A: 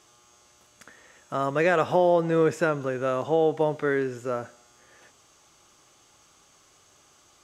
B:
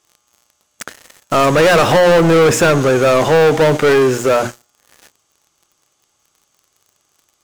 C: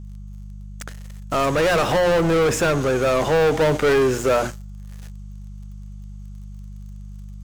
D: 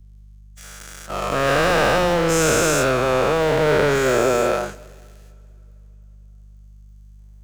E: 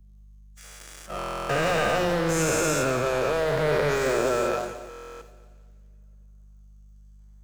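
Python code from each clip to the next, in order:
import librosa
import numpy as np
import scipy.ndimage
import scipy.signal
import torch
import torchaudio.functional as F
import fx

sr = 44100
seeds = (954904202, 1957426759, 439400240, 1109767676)

y1 = fx.high_shelf(x, sr, hz=5900.0, db=6.0)
y1 = fx.hum_notches(y1, sr, base_hz=60, count=6)
y1 = fx.leveller(y1, sr, passes=5)
y1 = F.gain(torch.from_numpy(y1), 2.5).numpy()
y2 = fx.rider(y1, sr, range_db=10, speed_s=2.0)
y2 = fx.dmg_buzz(y2, sr, base_hz=50.0, harmonics=4, level_db=-29.0, tilt_db=-6, odd_only=False)
y2 = F.gain(torch.from_numpy(y2), -7.0).numpy()
y3 = fx.spec_dilate(y2, sr, span_ms=480)
y3 = fx.rev_plate(y3, sr, seeds[0], rt60_s=4.0, hf_ratio=0.95, predelay_ms=0, drr_db=18.5)
y3 = fx.band_widen(y3, sr, depth_pct=40)
y3 = F.gain(torch.from_numpy(y3), -6.0).numpy()
y4 = fx.spec_quant(y3, sr, step_db=15)
y4 = fx.echo_feedback(y4, sr, ms=177, feedback_pct=54, wet_db=-13.0)
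y4 = fx.buffer_glitch(y4, sr, at_s=(1.17, 4.89), block=1024, repeats=13)
y4 = F.gain(torch.from_numpy(y4), -6.0).numpy()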